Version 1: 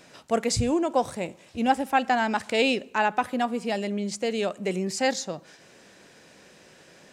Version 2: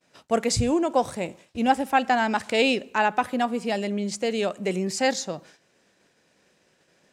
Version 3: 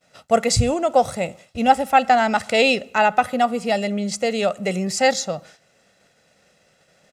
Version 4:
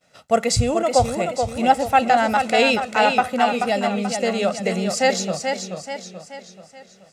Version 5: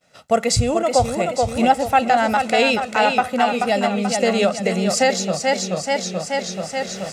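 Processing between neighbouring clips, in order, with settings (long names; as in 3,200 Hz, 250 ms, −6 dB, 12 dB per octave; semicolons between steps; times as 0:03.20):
downward expander −43 dBFS; level +1.5 dB
comb filter 1.5 ms, depth 59%; level +4 dB
feedback echo with a swinging delay time 431 ms, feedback 47%, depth 65 cents, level −6 dB; level −1 dB
camcorder AGC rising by 11 dB per second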